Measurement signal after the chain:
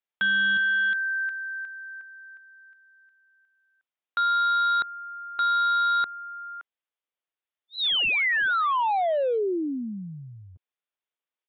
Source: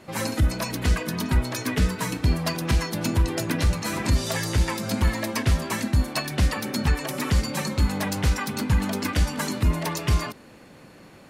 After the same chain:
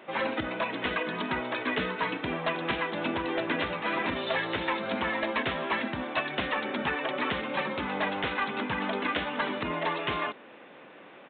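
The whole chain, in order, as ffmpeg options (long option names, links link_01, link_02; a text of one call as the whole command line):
ffmpeg -i in.wav -af "highpass=380,aresample=8000,asoftclip=type=hard:threshold=-23.5dB,aresample=44100,volume=2dB" out.wav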